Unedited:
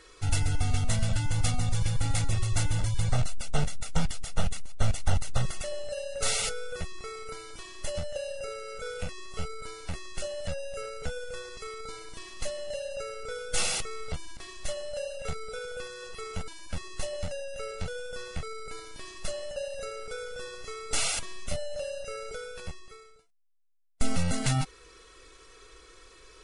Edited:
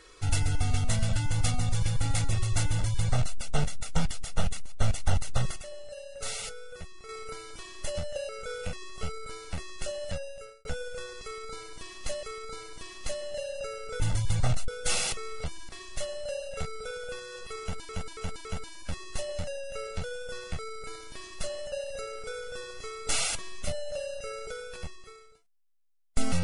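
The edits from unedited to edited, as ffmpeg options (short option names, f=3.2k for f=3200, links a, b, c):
-filter_complex "[0:a]asplit=11[a][b][c][d][e][f][g][h][i][j][k];[a]atrim=end=5.562[l];[b]atrim=start=5.558:end=7.092,asetpts=PTS-STARTPTS,volume=-7.5dB[m];[c]atrim=start=7.088:end=8.292[n];[d]atrim=start=8.648:end=11.01,asetpts=PTS-STARTPTS,afade=t=out:st=1.812:d=0.55[o];[e]atrim=start=11.01:end=12.592,asetpts=PTS-STARTPTS,afade=t=in:d=0.004:c=hsin[p];[f]atrim=start=11.588:end=13.362[q];[g]atrim=start=2.688:end=3.372[r];[h]atrim=start=13.358:end=16.572[s];[i]atrim=start=16.288:end=16.572[t];[j]atrim=start=16.288:end=16.572[u];[k]atrim=start=16.288[v];[l][m]acrossfade=d=0.004:c1=hsin:c2=hsin[w];[w][n]acrossfade=d=0.004:c1=hsin:c2=hsin[x];[o][p]concat=n=2:v=0:a=1[y];[x][y]acrossfade=d=0.004:c1=hsin:c2=hsin[z];[z][q]acrossfade=d=0.004:c1=hsin:c2=hsin[aa];[aa][r]acrossfade=d=0.004:c1=hsin:c2=hsin[ab];[ab][s]acrossfade=d=0.004:c1=hsin:c2=hsin[ac];[ac][t]acrossfade=d=0.004:c1=hsin:c2=hsin[ad];[ad][u]acrossfade=d=0.004:c1=hsin:c2=hsin[ae];[ae][v]acrossfade=d=0.004:c1=hsin:c2=hsin"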